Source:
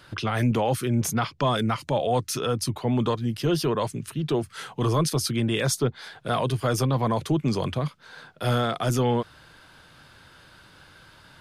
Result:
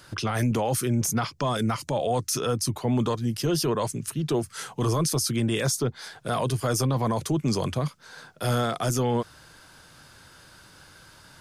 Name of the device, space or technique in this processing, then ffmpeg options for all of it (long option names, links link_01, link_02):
over-bright horn tweeter: -af "highshelf=frequency=4600:width_type=q:width=1.5:gain=6.5,alimiter=limit=-17dB:level=0:latency=1:release=17"